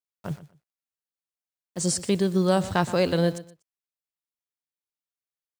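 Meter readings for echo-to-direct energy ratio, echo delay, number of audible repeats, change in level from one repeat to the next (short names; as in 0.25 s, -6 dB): -16.0 dB, 0.121 s, 2, -13.5 dB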